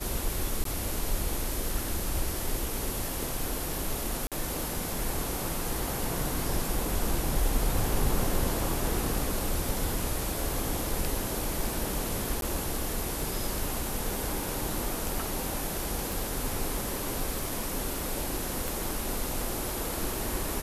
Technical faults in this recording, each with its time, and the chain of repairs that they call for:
0:00.64–0:00.65: drop-out 13 ms
0:04.27–0:04.32: drop-out 47 ms
0:12.41–0:12.42: drop-out 12 ms
0:16.12: click
0:18.68: click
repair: click removal
repair the gap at 0:00.64, 13 ms
repair the gap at 0:04.27, 47 ms
repair the gap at 0:12.41, 12 ms

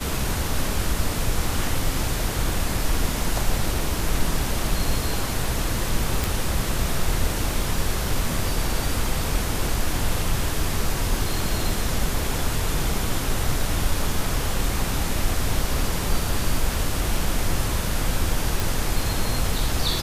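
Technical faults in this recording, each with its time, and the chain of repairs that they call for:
0:06.24: click
0:18.60: click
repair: click removal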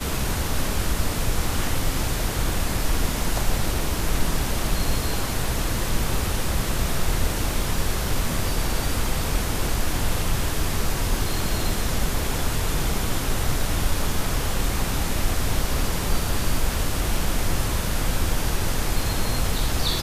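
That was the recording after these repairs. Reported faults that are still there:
none of them is left

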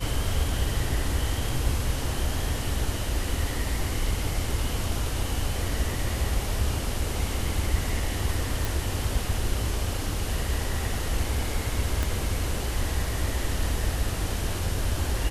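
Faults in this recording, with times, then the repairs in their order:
0:08.65: click
0:12.03: click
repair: click removal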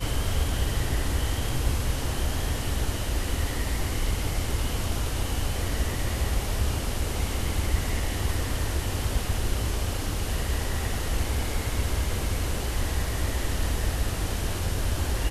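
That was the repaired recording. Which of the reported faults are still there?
0:12.03: click

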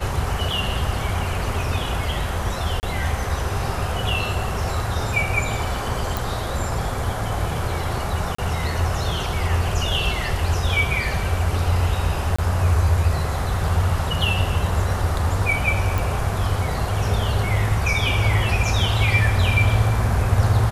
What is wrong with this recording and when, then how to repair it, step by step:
0:02.80–0:02.83: drop-out 29 ms
0:06.17: click
0:08.35–0:08.38: drop-out 34 ms
0:12.36–0:12.38: drop-out 25 ms
0:15.98: click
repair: click removal
repair the gap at 0:02.80, 29 ms
repair the gap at 0:08.35, 34 ms
repair the gap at 0:12.36, 25 ms

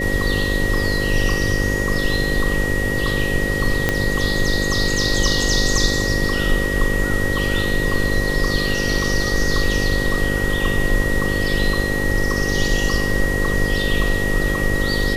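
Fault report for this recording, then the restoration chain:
mains buzz 50 Hz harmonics 11 −24 dBFS
whistle 1,900 Hz −23 dBFS
0:03.89: click −3 dBFS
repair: click removal
hum removal 50 Hz, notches 11
notch filter 1,900 Hz, Q 30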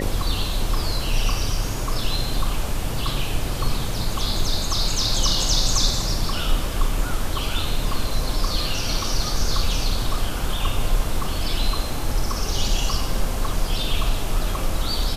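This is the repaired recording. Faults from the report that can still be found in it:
0:03.89: click

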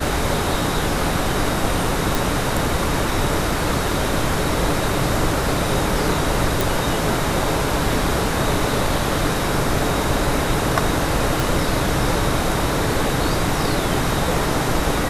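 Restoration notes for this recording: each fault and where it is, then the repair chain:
0:02.15: click
0:06.61: click
0:11.40: click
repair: click removal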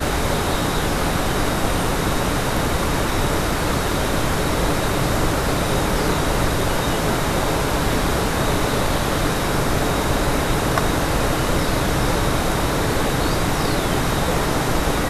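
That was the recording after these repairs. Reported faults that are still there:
none of them is left

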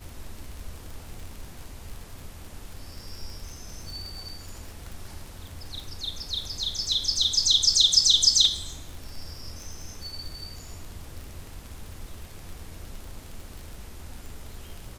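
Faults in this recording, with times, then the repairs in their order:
surface crackle 39 per second −34 dBFS
0:04.92: click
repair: click removal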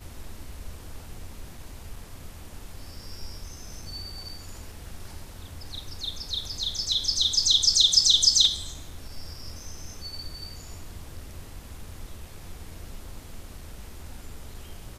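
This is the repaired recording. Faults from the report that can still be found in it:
none of them is left

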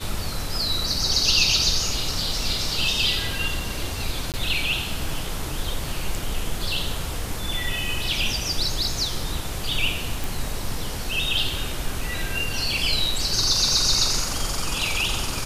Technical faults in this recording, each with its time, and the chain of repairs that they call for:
0:04.32–0:04.34: drop-out 18 ms
0:10.24: click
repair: click removal
repair the gap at 0:04.32, 18 ms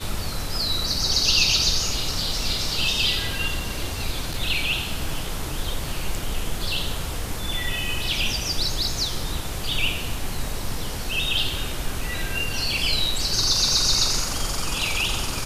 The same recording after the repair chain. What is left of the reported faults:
none of them is left

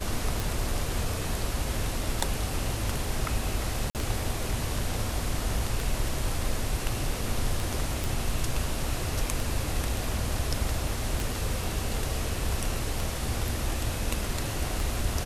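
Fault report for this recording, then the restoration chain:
scratch tick 33 1/3 rpm
0:03.90–0:03.95: drop-out 48 ms
0:08.04: click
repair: click removal
repair the gap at 0:03.90, 48 ms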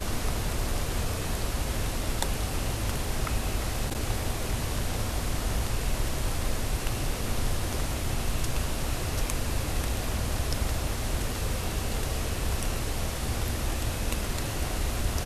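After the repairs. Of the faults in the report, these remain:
none of them is left

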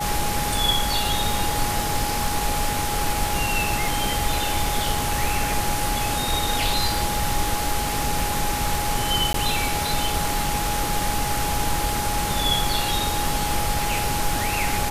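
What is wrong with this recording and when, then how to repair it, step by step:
surface crackle 38 per second −31 dBFS
whistle 830 Hz −27 dBFS
0:09.33–0:09.34: drop-out 13 ms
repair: click removal
notch filter 830 Hz, Q 30
repair the gap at 0:09.33, 13 ms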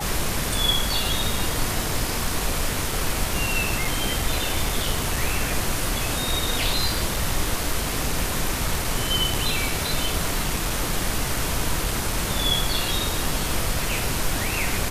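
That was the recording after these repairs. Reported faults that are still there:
none of them is left

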